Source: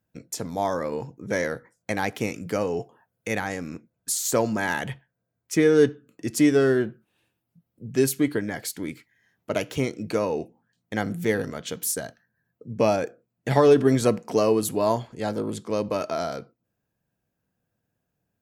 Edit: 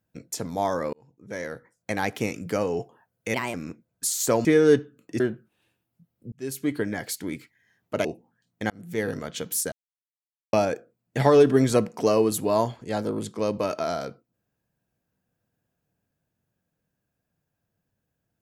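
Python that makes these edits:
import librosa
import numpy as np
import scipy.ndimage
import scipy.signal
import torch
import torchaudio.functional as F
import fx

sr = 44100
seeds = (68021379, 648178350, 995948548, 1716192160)

y = fx.edit(x, sr, fx.fade_in_span(start_s=0.93, length_s=1.13),
    fx.speed_span(start_s=3.34, length_s=0.25, speed=1.25),
    fx.cut(start_s=4.5, length_s=1.05),
    fx.cut(start_s=6.3, length_s=0.46),
    fx.fade_in_span(start_s=7.88, length_s=0.55),
    fx.cut(start_s=9.61, length_s=0.75),
    fx.fade_in_span(start_s=11.01, length_s=0.47),
    fx.silence(start_s=12.03, length_s=0.81), tone=tone)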